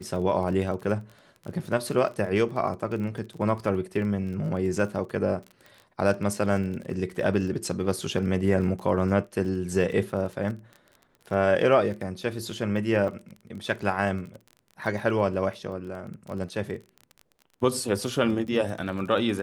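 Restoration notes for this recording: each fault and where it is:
crackle 25 per s -35 dBFS
13.08 s: dropout 2.2 ms

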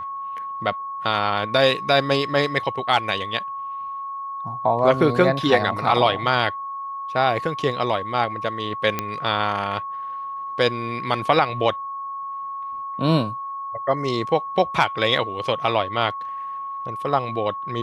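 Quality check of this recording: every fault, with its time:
whine 1.1 kHz -28 dBFS
8.99 s: pop -8 dBFS

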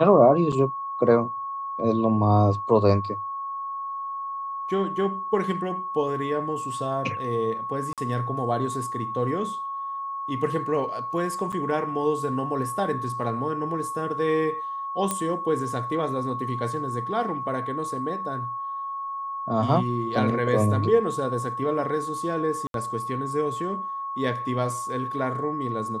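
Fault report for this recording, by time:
whine 1.1 kHz -29 dBFS
0.52–0.53 s: dropout 5.8 ms
7.93–7.98 s: dropout 47 ms
11.52–11.53 s: dropout 6.7 ms
15.11 s: pop -11 dBFS
22.67–22.74 s: dropout 72 ms

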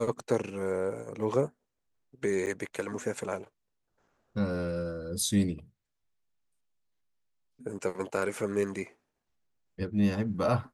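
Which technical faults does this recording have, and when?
2.46–2.47 s: dropout 8.5 ms

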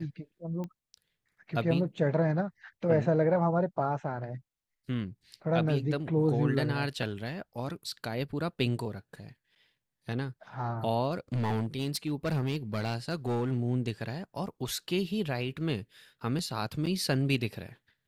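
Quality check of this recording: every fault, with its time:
0.64 s: pop -27 dBFS
11.33–13.53 s: clipped -26 dBFS

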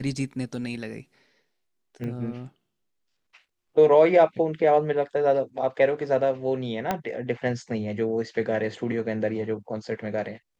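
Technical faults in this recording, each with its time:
2.04 s: pop -24 dBFS
6.91 s: pop -11 dBFS

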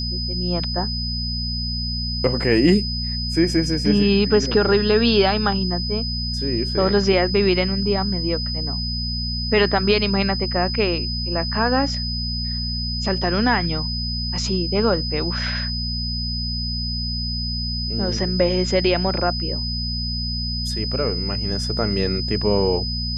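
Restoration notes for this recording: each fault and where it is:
hum 60 Hz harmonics 4 -27 dBFS
whine 5 kHz -26 dBFS

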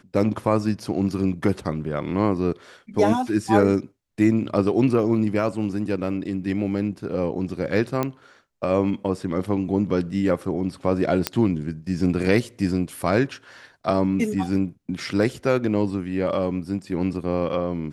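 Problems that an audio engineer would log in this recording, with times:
8.03 s: pop -11 dBFS
11.27 s: pop -4 dBFS

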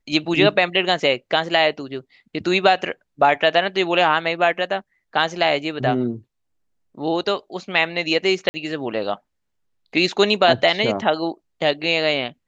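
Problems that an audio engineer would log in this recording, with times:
8.49–8.54 s: dropout 50 ms

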